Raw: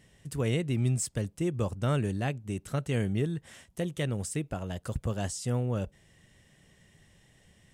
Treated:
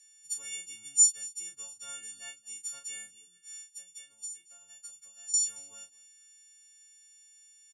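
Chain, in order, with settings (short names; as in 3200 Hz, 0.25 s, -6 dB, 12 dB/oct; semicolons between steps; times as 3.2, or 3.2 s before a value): frequency quantiser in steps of 4 st; 3.07–5.34 compressor 6:1, threshold -38 dBFS, peak gain reduction 14.5 dB; band-pass 6800 Hz, Q 3.9; doubler 33 ms -7 dB; feedback echo 0.223 s, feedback 27%, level -22 dB; gain +4 dB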